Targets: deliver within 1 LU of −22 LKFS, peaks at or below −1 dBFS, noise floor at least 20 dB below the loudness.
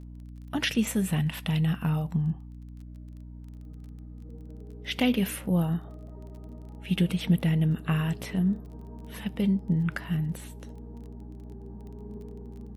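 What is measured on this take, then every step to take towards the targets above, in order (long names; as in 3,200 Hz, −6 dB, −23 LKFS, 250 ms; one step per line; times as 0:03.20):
crackle rate 23 per second; mains hum 60 Hz; hum harmonics up to 300 Hz; level of the hum −41 dBFS; integrated loudness −28.0 LKFS; sample peak −11.0 dBFS; target loudness −22.0 LKFS
→ click removal
hum removal 60 Hz, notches 5
level +6 dB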